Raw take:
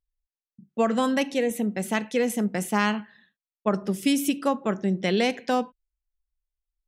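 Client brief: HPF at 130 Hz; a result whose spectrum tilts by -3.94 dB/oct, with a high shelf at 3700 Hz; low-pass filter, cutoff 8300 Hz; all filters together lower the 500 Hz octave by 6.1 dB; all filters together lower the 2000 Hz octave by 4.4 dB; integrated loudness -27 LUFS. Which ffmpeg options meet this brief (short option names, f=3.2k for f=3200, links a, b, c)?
-af "highpass=130,lowpass=8.3k,equalizer=f=500:t=o:g=-7,equalizer=f=2k:t=o:g=-7.5,highshelf=f=3.7k:g=8.5,volume=1dB"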